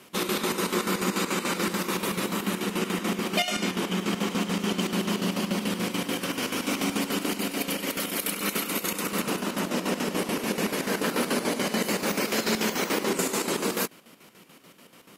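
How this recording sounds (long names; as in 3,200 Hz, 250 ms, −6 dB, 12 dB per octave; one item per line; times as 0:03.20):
chopped level 6.9 Hz, depth 60%, duty 60%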